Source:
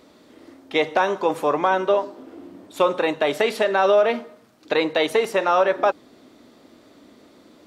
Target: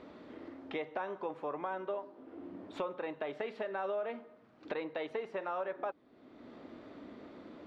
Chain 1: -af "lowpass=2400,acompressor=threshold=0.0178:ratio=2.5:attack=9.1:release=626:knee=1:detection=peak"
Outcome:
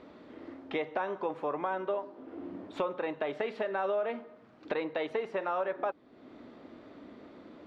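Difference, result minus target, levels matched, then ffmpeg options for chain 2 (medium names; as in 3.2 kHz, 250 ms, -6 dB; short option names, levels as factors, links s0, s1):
compression: peak gain reduction -5 dB
-af "lowpass=2400,acompressor=threshold=0.00668:ratio=2.5:attack=9.1:release=626:knee=1:detection=peak"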